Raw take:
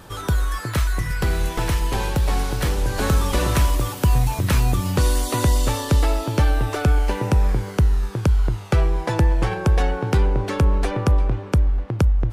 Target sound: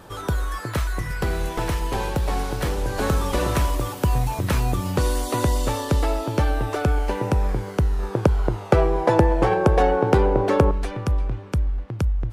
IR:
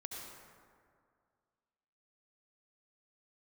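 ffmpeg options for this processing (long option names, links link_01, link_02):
-af "asetnsamples=nb_out_samples=441:pad=0,asendcmd='7.99 equalizer g 13.5;10.71 equalizer g -2.5',equalizer=frequency=560:width=0.45:gain=5.5,volume=-4.5dB"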